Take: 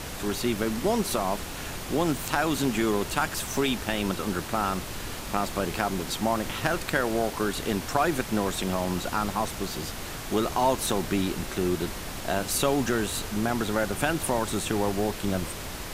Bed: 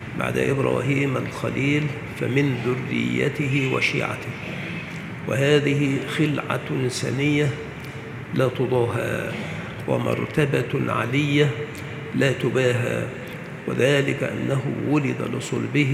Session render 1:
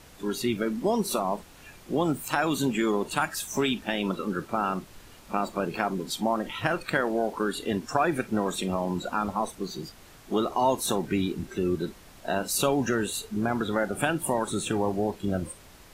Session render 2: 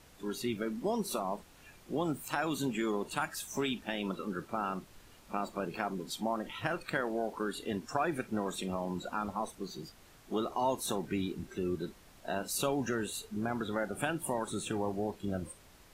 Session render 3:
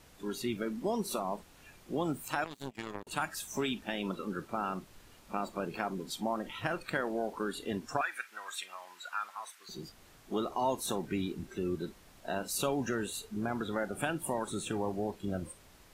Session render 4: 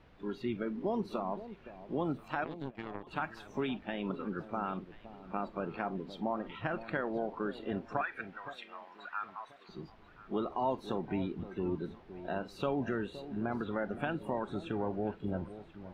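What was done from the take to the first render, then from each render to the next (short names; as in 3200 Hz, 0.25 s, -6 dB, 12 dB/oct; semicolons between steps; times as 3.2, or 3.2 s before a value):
noise print and reduce 15 dB
gain -7.5 dB
2.44–3.07 power-law curve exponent 3; 8.01–9.69 resonant high-pass 1600 Hz, resonance Q 1.8
air absorption 350 m; echo with dull and thin repeats by turns 0.517 s, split 810 Hz, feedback 52%, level -12.5 dB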